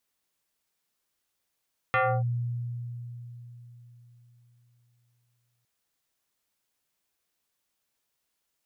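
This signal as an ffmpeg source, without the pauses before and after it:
ffmpeg -f lavfi -i "aevalsrc='0.1*pow(10,-3*t/4.04)*sin(2*PI*120*t+3.2*clip(1-t/0.29,0,1)*sin(2*PI*5.36*120*t))':duration=3.71:sample_rate=44100" out.wav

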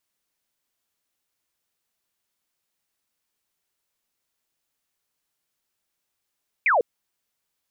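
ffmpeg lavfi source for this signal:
ffmpeg -f lavfi -i "aevalsrc='0.158*clip(t/0.002,0,1)*clip((0.15-t)/0.002,0,1)*sin(2*PI*2500*0.15/log(430/2500)*(exp(log(430/2500)*t/0.15)-1))':duration=0.15:sample_rate=44100" out.wav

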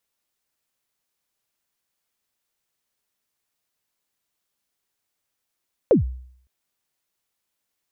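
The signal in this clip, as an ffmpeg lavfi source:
ffmpeg -f lavfi -i "aevalsrc='0.355*pow(10,-3*t/0.62)*sin(2*PI*(580*0.127/log(63/580)*(exp(log(63/580)*min(t,0.127)/0.127)-1)+63*max(t-0.127,0)))':duration=0.56:sample_rate=44100" out.wav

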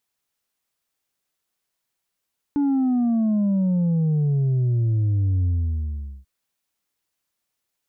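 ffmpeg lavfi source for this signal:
ffmpeg -f lavfi -i "aevalsrc='0.126*clip((3.69-t)/0.8,0,1)*tanh(1.41*sin(2*PI*290*3.69/log(65/290)*(exp(log(65/290)*t/3.69)-1)))/tanh(1.41)':duration=3.69:sample_rate=44100" out.wav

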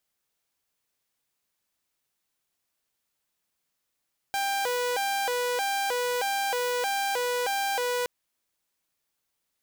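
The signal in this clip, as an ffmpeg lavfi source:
ffmpeg -f lavfi -i "aevalsrc='0.0708*(2*mod((641.5*t+150.5/1.6*(0.5-abs(mod(1.6*t,1)-0.5))),1)-1)':duration=3.72:sample_rate=44100" out.wav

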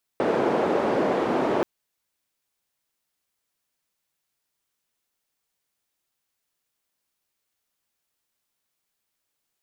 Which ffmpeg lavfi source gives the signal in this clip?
ffmpeg -f lavfi -i "anoisesrc=color=white:duration=1.43:sample_rate=44100:seed=1,highpass=frequency=340,lowpass=frequency=460,volume=2.4dB" out.wav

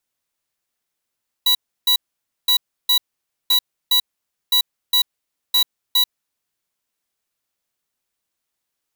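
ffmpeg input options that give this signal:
ffmpeg -f lavfi -i "aevalsrc='0.178*(2*lt(mod(3920*t,1),0.5)-1)*clip(min(mod(mod(t,1.02),0.41),0.09-mod(mod(t,1.02),0.41))/0.005,0,1)*lt(mod(t,1.02),0.82)':duration=5.1:sample_rate=44100" out.wav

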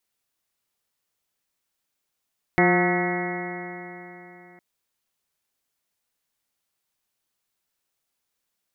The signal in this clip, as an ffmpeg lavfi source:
ffmpeg -f lavfi -i "aevalsrc='0.0841*pow(10,-3*t/3.54)*sin(2*PI*176.18*t)+0.112*pow(10,-3*t/3.54)*sin(2*PI*353.48*t)+0.0376*pow(10,-3*t/3.54)*sin(2*PI*532.97*t)+0.0841*pow(10,-3*t/3.54)*sin(2*PI*715.73*t)+0.0355*pow(10,-3*t/3.54)*sin(2*PI*902.8*t)+0.0211*pow(10,-3*t/3.54)*sin(2*PI*1095.19*t)+0.0282*pow(10,-3*t/3.54)*sin(2*PI*1293.83*t)+0.0266*pow(10,-3*t/3.54)*sin(2*PI*1499.64*t)+0.0316*pow(10,-3*t/3.54)*sin(2*PI*1713.43*t)+0.075*pow(10,-3*t/3.54)*sin(2*PI*1936*t)+0.0708*pow(10,-3*t/3.54)*sin(2*PI*2168.06*t)':duration=2.01:sample_rate=44100" out.wav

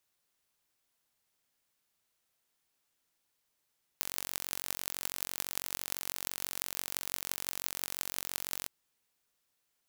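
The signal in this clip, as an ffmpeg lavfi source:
ffmpeg -f lavfi -i "aevalsrc='0.596*eq(mod(n,959),0)*(0.5+0.5*eq(mod(n,7672),0))':duration=4.67:sample_rate=44100" out.wav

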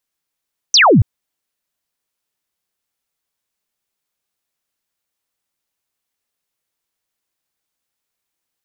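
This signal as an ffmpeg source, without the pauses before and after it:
ffmpeg -f lavfi -i "aevalsrc='0.501*clip(t/0.002,0,1)*clip((0.28-t)/0.002,0,1)*sin(2*PI*6300*0.28/log(85/6300)*(exp(log(85/6300)*t/0.28)-1))':duration=0.28:sample_rate=44100" out.wav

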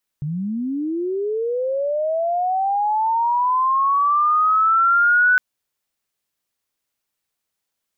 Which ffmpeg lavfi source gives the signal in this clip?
ffmpeg -f lavfi -i "aevalsrc='pow(10,(-22+10.5*t/5.16)/20)*sin(2*PI*(140*t+1360*t*t/(2*5.16)))':duration=5.16:sample_rate=44100" out.wav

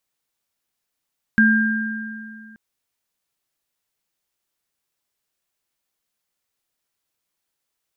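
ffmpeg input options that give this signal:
ffmpeg -f lavfi -i "aevalsrc='0.237*pow(10,-3*t/2.3)*sin(2*PI*219*t)+0.237*pow(10,-3*t/2.1)*sin(2*PI*1600*t)':duration=1.18:sample_rate=44100" out.wav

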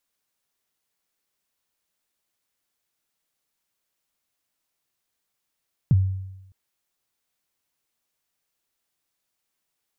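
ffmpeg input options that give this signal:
ffmpeg -f lavfi -i "aevalsrc='0.266*pow(10,-3*t/0.94)*sin(2*PI*(170*0.032/log(95/170)*(exp(log(95/170)*min(t,0.032)/0.032)-1)+95*max(t-0.032,0)))':duration=0.61:sample_rate=44100" out.wav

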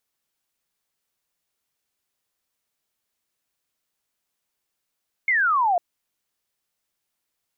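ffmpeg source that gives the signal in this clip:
ffmpeg -f lavfi -i "aevalsrc='0.141*clip(t/0.002,0,1)*clip((0.5-t)/0.002,0,1)*sin(2*PI*2200*0.5/log(670/2200)*(exp(log(670/2200)*t/0.5)-1))':duration=0.5:sample_rate=44100" out.wav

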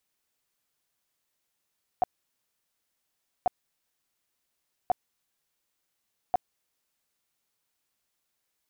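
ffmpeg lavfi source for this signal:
ffmpeg -f lavfi -i "aevalsrc='0.119*sin(2*PI*728*mod(t,1.44))*lt(mod(t,1.44),12/728)':duration=5.76:sample_rate=44100" out.wav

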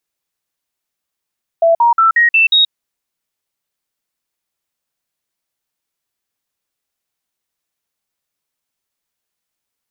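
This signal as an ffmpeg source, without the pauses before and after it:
ffmpeg -f lavfi -i "aevalsrc='0.447*clip(min(mod(t,0.18),0.13-mod(t,0.18))/0.005,0,1)*sin(2*PI*666*pow(2,floor(t/0.18)/2)*mod(t,0.18))':duration=1.08:sample_rate=44100" out.wav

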